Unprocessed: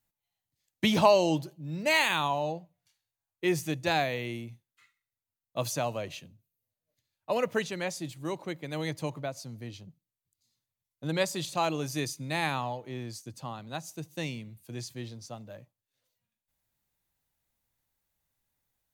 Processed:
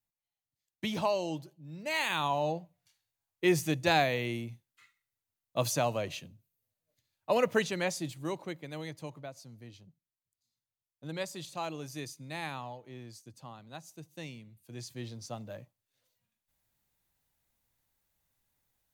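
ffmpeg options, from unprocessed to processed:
ffmpeg -i in.wav -af "volume=12dB,afade=type=in:start_time=1.9:duration=0.66:silence=0.298538,afade=type=out:start_time=7.89:duration=1.01:silence=0.316228,afade=type=in:start_time=14.6:duration=0.79:silence=0.298538" out.wav

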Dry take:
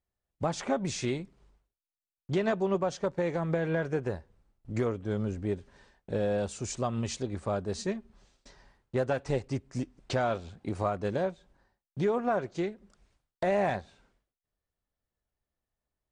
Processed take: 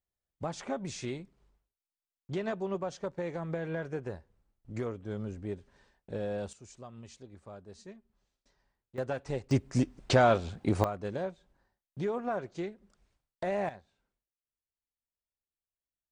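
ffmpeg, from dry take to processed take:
ffmpeg -i in.wav -af "asetnsamples=nb_out_samples=441:pad=0,asendcmd='6.53 volume volume -16.5dB;8.98 volume volume -5dB;9.51 volume volume 6dB;10.84 volume volume -5dB;13.69 volume volume -16dB',volume=-6dB" out.wav

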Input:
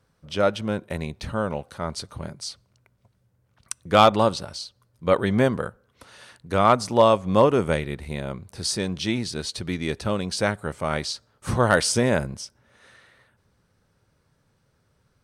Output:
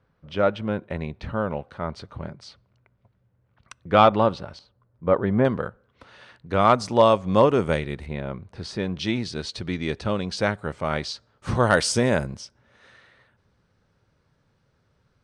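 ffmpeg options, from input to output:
ffmpeg -i in.wav -af "asetnsamples=nb_out_samples=441:pad=0,asendcmd='4.59 lowpass f 1400;5.45 lowpass f 3500;6.59 lowpass f 6600;8.06 lowpass f 2700;8.99 lowpass f 5000;11.55 lowpass f 8600;12.37 lowpass f 5300',lowpass=2700" out.wav

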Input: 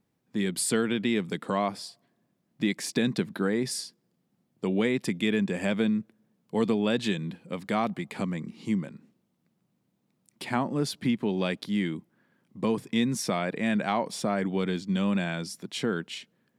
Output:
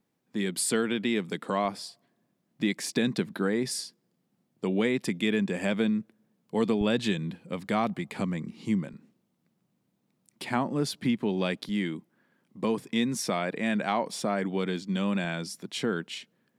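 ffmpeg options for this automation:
ffmpeg -i in.wav -af "asetnsamples=nb_out_samples=441:pad=0,asendcmd='1.65 equalizer g -6.5;6.81 equalizer g 3.5;8.93 equalizer g -3.5;11.69 equalizer g -13;15.24 equalizer g -6.5',equalizer=frequency=64:width_type=o:width=1.5:gain=-13.5" out.wav

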